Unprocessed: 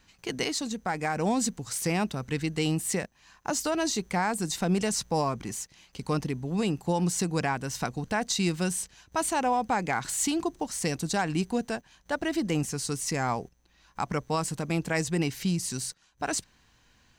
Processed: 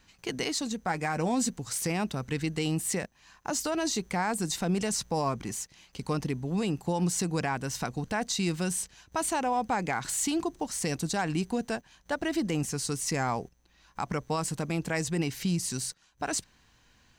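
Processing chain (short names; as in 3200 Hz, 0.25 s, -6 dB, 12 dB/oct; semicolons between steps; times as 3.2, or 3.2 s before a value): limiter -19.5 dBFS, peak gain reduction 3 dB; 0.86–1.5 doubler 12 ms -10.5 dB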